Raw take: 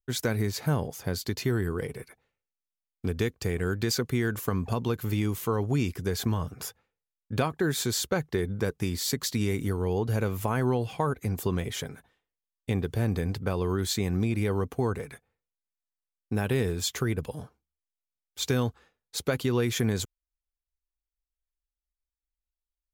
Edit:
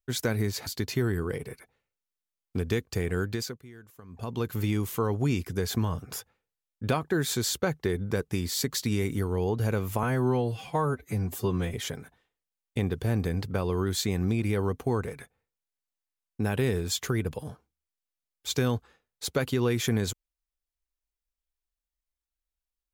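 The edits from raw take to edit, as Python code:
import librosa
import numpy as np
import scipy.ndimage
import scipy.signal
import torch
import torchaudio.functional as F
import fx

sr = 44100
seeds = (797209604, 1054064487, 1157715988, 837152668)

y = fx.edit(x, sr, fx.cut(start_s=0.67, length_s=0.49),
    fx.fade_down_up(start_s=3.69, length_s=1.3, db=-21.0, fade_s=0.42),
    fx.stretch_span(start_s=10.52, length_s=1.14, factor=1.5), tone=tone)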